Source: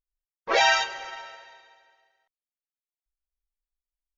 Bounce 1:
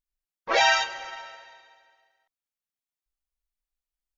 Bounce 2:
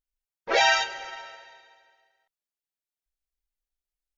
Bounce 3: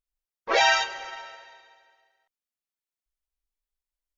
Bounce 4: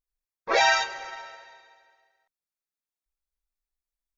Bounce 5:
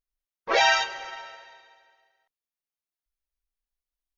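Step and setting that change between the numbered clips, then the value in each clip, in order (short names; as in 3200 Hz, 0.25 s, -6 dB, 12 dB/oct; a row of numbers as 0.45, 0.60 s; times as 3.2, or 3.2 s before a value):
notch, frequency: 420, 1100, 160, 3000, 7600 Hz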